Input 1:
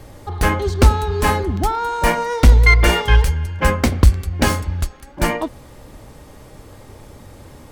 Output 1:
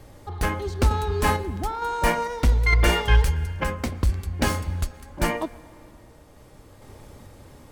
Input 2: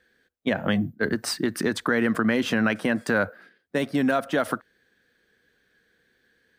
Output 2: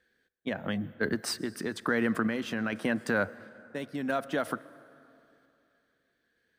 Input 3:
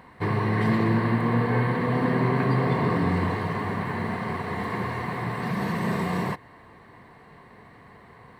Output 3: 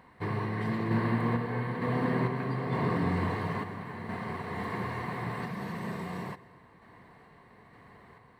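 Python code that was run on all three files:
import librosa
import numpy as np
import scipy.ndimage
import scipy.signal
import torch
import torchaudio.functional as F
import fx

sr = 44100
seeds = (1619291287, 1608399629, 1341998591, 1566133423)

y = fx.tremolo_random(x, sr, seeds[0], hz=2.2, depth_pct=55)
y = fx.rev_plate(y, sr, seeds[1], rt60_s=2.8, hf_ratio=0.55, predelay_ms=105, drr_db=19.5)
y = y * librosa.db_to_amplitude(-4.5)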